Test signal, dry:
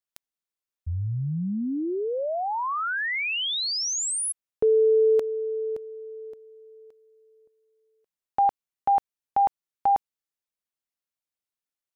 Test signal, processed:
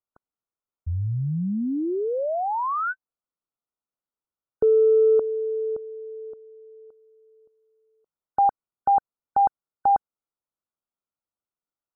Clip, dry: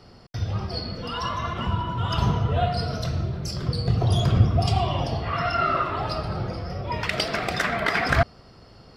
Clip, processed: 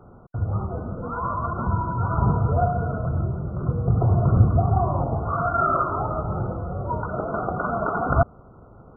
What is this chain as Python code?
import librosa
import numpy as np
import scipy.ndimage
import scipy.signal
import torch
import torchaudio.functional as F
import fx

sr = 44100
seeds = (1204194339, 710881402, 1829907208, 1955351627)

p1 = 10.0 ** (-14.0 / 20.0) * np.tanh(x / 10.0 ** (-14.0 / 20.0))
p2 = x + (p1 * librosa.db_to_amplitude(-10.5))
y = fx.brickwall_lowpass(p2, sr, high_hz=1500.0)